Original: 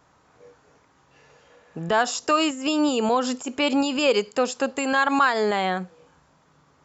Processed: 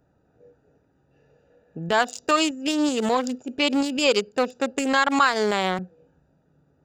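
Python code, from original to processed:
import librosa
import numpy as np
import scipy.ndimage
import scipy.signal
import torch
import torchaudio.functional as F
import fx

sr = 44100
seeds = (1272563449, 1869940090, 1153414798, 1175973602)

y = fx.wiener(x, sr, points=41)
y = fx.high_shelf(y, sr, hz=2900.0, db=10.0)
y = fx.band_squash(y, sr, depth_pct=40, at=(4.77, 5.79))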